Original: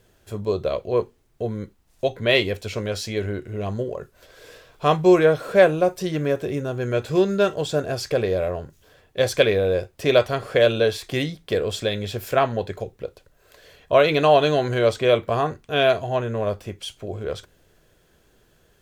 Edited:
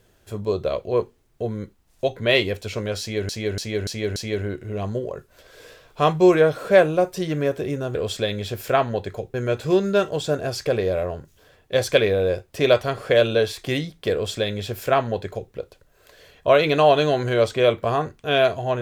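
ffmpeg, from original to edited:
-filter_complex "[0:a]asplit=7[s0][s1][s2][s3][s4][s5][s6];[s0]atrim=end=3.292[s7];[s1]atrim=start=2.998:end=3.292[s8];[s2]atrim=start=2.998:end=3.292[s9];[s3]atrim=start=2.998:end=3.292[s10];[s4]atrim=start=2.998:end=6.792[s11];[s5]atrim=start=11.578:end=12.972[s12];[s6]atrim=start=6.788[s13];[s7][s8]acrossfade=d=0.004:c1=hsin:c2=hsin[s14];[s14][s9]acrossfade=d=0.004:c1=hsin:c2=hsin[s15];[s15][s10]acrossfade=d=0.004:c1=hsin:c2=hsin[s16];[s16][s11]acrossfade=d=0.004:c1=hsin:c2=hsin[s17];[s17][s12]acrossfade=d=0.004:c1=hsin:c2=hsin[s18];[s18][s13]acrossfade=d=0.004:c1=hsin:c2=hsin"

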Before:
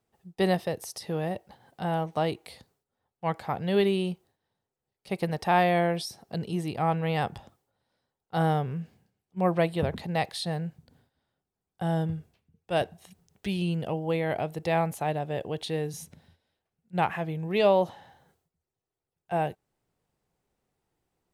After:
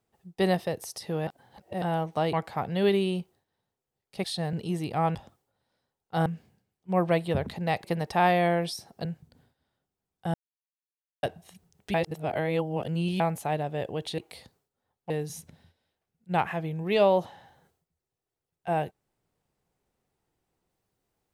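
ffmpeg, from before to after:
-filter_complex "[0:a]asplit=16[s0][s1][s2][s3][s4][s5][s6][s7][s8][s9][s10][s11][s12][s13][s14][s15];[s0]atrim=end=1.272[s16];[s1]atrim=start=1.268:end=1.822,asetpts=PTS-STARTPTS,areverse[s17];[s2]atrim=start=1.818:end=2.332[s18];[s3]atrim=start=3.248:end=5.162[s19];[s4]atrim=start=10.318:end=10.612[s20];[s5]atrim=start=6.368:end=6.992[s21];[s6]atrim=start=7.348:end=8.462[s22];[s7]atrim=start=8.738:end=10.322[s23];[s8]atrim=start=5.158:end=6.372[s24];[s9]atrim=start=10.608:end=11.9,asetpts=PTS-STARTPTS,afade=t=out:st=1.288:d=0.004:c=hsin[s25];[s10]atrim=start=11.9:end=12.79,asetpts=PTS-STARTPTS,volume=0[s26];[s11]atrim=start=12.79:end=13.502,asetpts=PTS-STARTPTS,afade=t=in:d=0.004:c=hsin[s27];[s12]atrim=start=13.498:end=14.762,asetpts=PTS-STARTPTS,areverse[s28];[s13]atrim=start=14.758:end=15.742[s29];[s14]atrim=start=2.328:end=3.252[s30];[s15]atrim=start=15.738[s31];[s16][s17]acrossfade=d=0.004:c1=hsin:c2=hsin[s32];[s32][s18]acrossfade=d=0.004:c1=hsin:c2=hsin[s33];[s33][s19]acrossfade=d=0.004:c1=hsin:c2=hsin[s34];[s34][s20]acrossfade=d=0.004:c1=hsin:c2=hsin[s35];[s35][s21]acrossfade=d=0.004:c1=hsin:c2=hsin[s36];[s36][s22]acrossfade=d=0.004:c1=hsin:c2=hsin[s37];[s37][s23]acrossfade=d=0.004:c1=hsin:c2=hsin[s38];[s38][s24]acrossfade=d=0.004:c1=hsin:c2=hsin[s39];[s25][s26][s27]concat=n=3:v=0:a=1[s40];[s39][s40]acrossfade=d=0.004:c1=hsin:c2=hsin[s41];[s41][s28]acrossfade=d=0.004:c1=hsin:c2=hsin[s42];[s42][s29]acrossfade=d=0.004:c1=hsin:c2=hsin[s43];[s43][s30]acrossfade=d=0.004:c1=hsin:c2=hsin[s44];[s44][s31]acrossfade=d=0.004:c1=hsin:c2=hsin"

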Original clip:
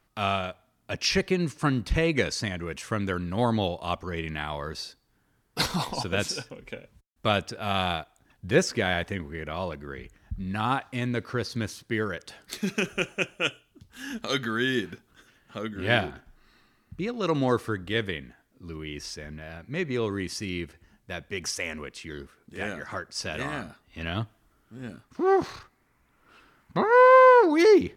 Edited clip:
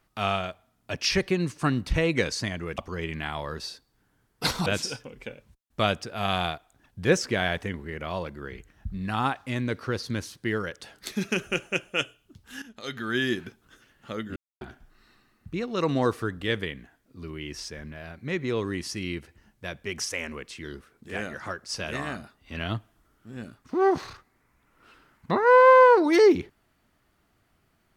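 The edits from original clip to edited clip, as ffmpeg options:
-filter_complex "[0:a]asplit=6[s0][s1][s2][s3][s4][s5];[s0]atrim=end=2.782[s6];[s1]atrim=start=3.928:end=5.812[s7];[s2]atrim=start=6.118:end=14.08,asetpts=PTS-STARTPTS,afade=t=out:st=7.958:d=0.004:c=hsin:silence=0.199526[s8];[s3]atrim=start=14.08:end=15.82,asetpts=PTS-STARTPTS,afade=t=in:d=0.54:c=qua:silence=0.199526,afade=t=out:st=1.736:d=0.004:c=hsin[s9];[s4]atrim=start=15.82:end=16.07,asetpts=PTS-STARTPTS,volume=0[s10];[s5]atrim=start=16.07,asetpts=PTS-STARTPTS,afade=t=in:d=0.004:c=hsin[s11];[s6][s7]acrossfade=d=0.004:c1=hsin:c2=hsin[s12];[s8][s9][s10][s11]concat=n=4:v=0:a=1[s13];[s12][s13]acrossfade=d=0.004:c1=hsin:c2=hsin"

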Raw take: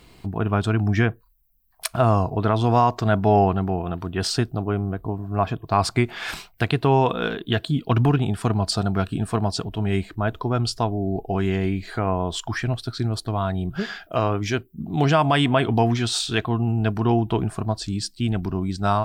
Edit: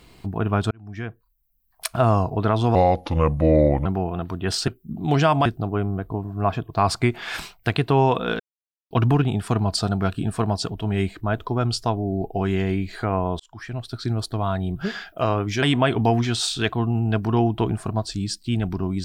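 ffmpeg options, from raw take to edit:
-filter_complex "[0:a]asplit=10[s0][s1][s2][s3][s4][s5][s6][s7][s8][s9];[s0]atrim=end=0.71,asetpts=PTS-STARTPTS,afade=t=out:st=0.706:d=0.004:c=hsin[s10];[s1]atrim=start=0.71:end=2.754,asetpts=PTS-STARTPTS,afade=t=in:d=1.22[s11];[s2]atrim=start=2.75:end=3.58,asetpts=PTS-STARTPTS,asetrate=33075,aresample=44100[s12];[s3]atrim=start=3.576:end=4.402[s13];[s4]atrim=start=14.568:end=15.352[s14];[s5]atrim=start=4.398:end=7.34,asetpts=PTS-STARTPTS,afade=t=out:st=2.938:d=0.004:c=hsin[s15];[s6]atrim=start=7.34:end=7.85,asetpts=PTS-STARTPTS,volume=0[s16];[s7]atrim=start=7.85:end=12.34,asetpts=PTS-STARTPTS,afade=t=in:d=0.004:c=hsin,afade=t=out:st=4.486:d=0.004:c=hsin[s17];[s8]atrim=start=12.34:end=14.572,asetpts=PTS-STARTPTS,afade=t=in:d=0.72[s18];[s9]atrim=start=15.348[s19];[s10][s11]concat=n=2:v=0:a=1[s20];[s20][s12]acrossfade=d=0.004:c1=hsin:c2=hsin[s21];[s21][s13]acrossfade=d=0.004:c1=hsin:c2=hsin[s22];[s22][s14]acrossfade=d=0.004:c1=hsin:c2=hsin[s23];[s15][s16][s17][s18]concat=n=4:v=0:a=1[s24];[s23][s24]acrossfade=d=0.004:c1=hsin:c2=hsin[s25];[s25][s19]acrossfade=d=0.004:c1=hsin:c2=hsin"

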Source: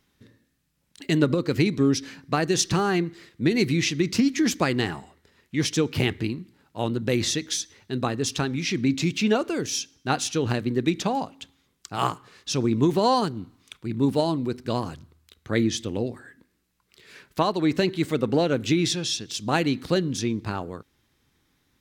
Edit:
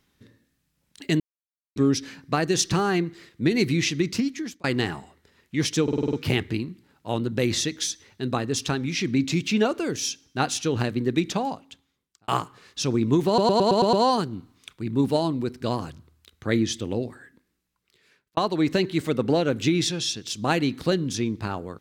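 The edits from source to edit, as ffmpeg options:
-filter_complex "[0:a]asplit=18[s0][s1][s2][s3][s4][s5][s6][s7][s8][s9][s10][s11][s12][s13][s14][s15][s16][s17];[s0]atrim=end=1.2,asetpts=PTS-STARTPTS,afade=t=out:st=1.196:d=0.004:c=hsin[s18];[s1]atrim=start=1.2:end=1.76,asetpts=PTS-STARTPTS,volume=0[s19];[s2]atrim=start=1.76:end=4.64,asetpts=PTS-STARTPTS,afade=t=in:d=0.004:c=hsin,afade=t=out:st=2.22:d=0.66[s20];[s3]atrim=start=4.64:end=5.882,asetpts=PTS-STARTPTS,afade=t=in:d=0.004:c=hsin[s21];[s4]atrim=start=5.828:end=5.882[s22];[s5]atrim=start=5.828:end=5.882[s23];[s6]atrim=start=5.828:end=5.882[s24];[s7]atrim=start=5.828:end=5.882[s25];[s8]atrim=start=5.828:end=5.882[s26];[s9]atrim=start=5.828:end=11.98,asetpts=PTS-STARTPTS,afade=t=out:st=5.162:d=0.99[s27];[s10]atrim=start=11.98:end=13.082,asetpts=PTS-STARTPTS,afade=t=in:d=0.004:c=hsin[s28];[s11]atrim=start=12.968:end=13.082[s29];[s12]atrim=start=12.968:end=13.082[s30];[s13]atrim=start=12.968:end=13.082[s31];[s14]atrim=start=12.968:end=13.082[s32];[s15]atrim=start=12.968:end=13.082[s33];[s16]atrim=start=12.968:end=17.41,asetpts=PTS-STARTPTS,afade=t=out:st=3.142:d=1.3[s34];[s17]atrim=start=17.41,asetpts=PTS-STARTPTS,afade=t=in:d=0.004:c=hsin[s35];[s18][s19][s20][s21]concat=n=4:v=0:a=1[s36];[s36][s22]acrossfade=d=0.004:c1=hsin:c2=hsin[s37];[s37][s23]acrossfade=d=0.004:c1=hsin:c2=hsin[s38];[s38][s24]acrossfade=d=0.004:c1=hsin:c2=hsin[s39];[s39][s25]acrossfade=d=0.004:c1=hsin:c2=hsin[s40];[s40][s26]acrossfade=d=0.004:c1=hsin:c2=hsin[s41];[s27][s28]concat=n=2:v=0:a=1[s42];[s41][s42]acrossfade=d=0.004:c1=hsin:c2=hsin[s43];[s43][s29]acrossfade=d=0.004:c1=hsin:c2=hsin[s44];[s44][s30]acrossfade=d=0.004:c1=hsin:c2=hsin[s45];[s45][s31]acrossfade=d=0.004:c1=hsin:c2=hsin[s46];[s46][s32]acrossfade=d=0.004:c1=hsin:c2=hsin[s47];[s47][s33]acrossfade=d=0.004:c1=hsin:c2=hsin[s48];[s34][s35]concat=n=2:v=0:a=1[s49];[s48][s49]acrossfade=d=0.004:c1=hsin:c2=hsin"

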